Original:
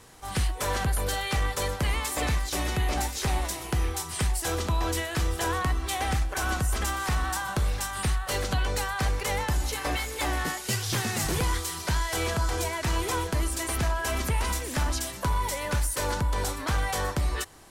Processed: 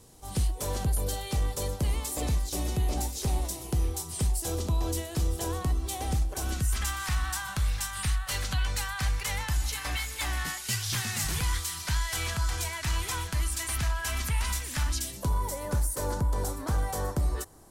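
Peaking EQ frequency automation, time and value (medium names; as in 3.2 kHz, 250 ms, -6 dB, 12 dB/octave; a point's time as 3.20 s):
peaking EQ -14.5 dB 2 oct
6.40 s 1.7 kHz
6.82 s 430 Hz
14.82 s 430 Hz
15.38 s 2.6 kHz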